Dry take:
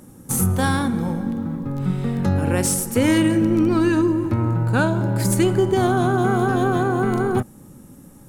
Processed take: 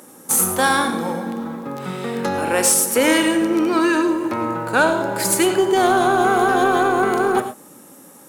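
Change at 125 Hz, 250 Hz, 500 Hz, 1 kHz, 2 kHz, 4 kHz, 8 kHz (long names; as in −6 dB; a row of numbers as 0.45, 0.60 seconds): −13.5, −1.5, +3.0, +6.5, +7.0, +7.0, +7.0 decibels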